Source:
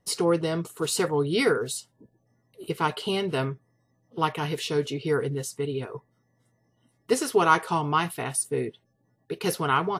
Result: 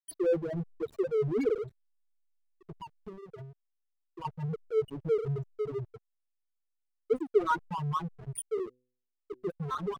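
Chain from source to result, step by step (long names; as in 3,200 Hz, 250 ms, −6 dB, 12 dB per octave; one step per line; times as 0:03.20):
spectral peaks only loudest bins 2
dynamic equaliser 120 Hz, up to +4 dB, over −50 dBFS, Q 2.3
0:02.64–0:04.25: downward compressor 16 to 1, threshold −36 dBFS, peak gain reduction 10 dB
slack as between gear wheels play −32 dBFS
0:08.65–0:09.46: hum removal 125.4 Hz, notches 4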